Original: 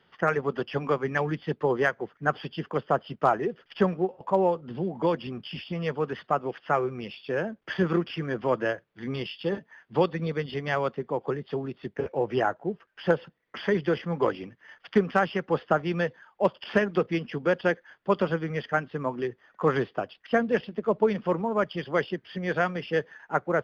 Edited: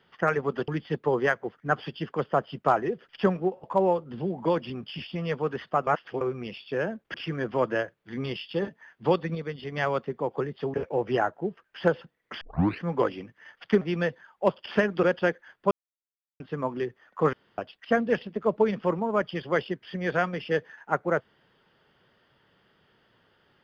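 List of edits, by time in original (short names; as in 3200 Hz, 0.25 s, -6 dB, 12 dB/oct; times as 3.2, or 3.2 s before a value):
0.68–1.25 cut
6.44–6.78 reverse
7.71–8.04 cut
10.25–10.62 gain -4.5 dB
11.64–11.97 cut
13.64 tape start 0.40 s
15.04–15.79 cut
17.01–17.45 cut
18.13–18.82 mute
19.75–20 room tone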